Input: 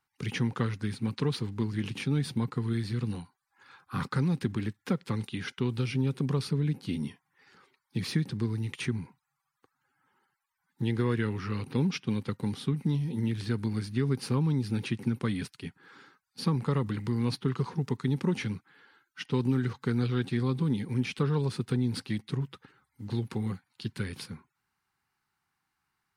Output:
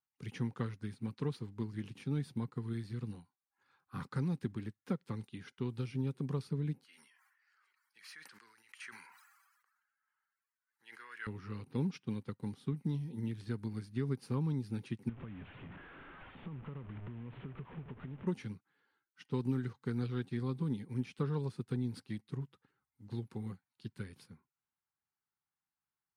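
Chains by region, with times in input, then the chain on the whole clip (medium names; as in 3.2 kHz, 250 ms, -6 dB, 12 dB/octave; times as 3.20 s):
6.84–11.27 s: resonant high-pass 1.5 kHz, resonance Q 2 + band-stop 3.6 kHz, Q 7.2 + decay stretcher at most 34 dB/s
15.09–18.27 s: one-bit delta coder 16 kbps, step -32 dBFS + compression 4:1, threshold -34 dBFS + bass shelf 100 Hz +10.5 dB
whole clip: peaking EQ 3.2 kHz -3.5 dB 2.3 oct; upward expansion 1.5:1, over -44 dBFS; trim -6 dB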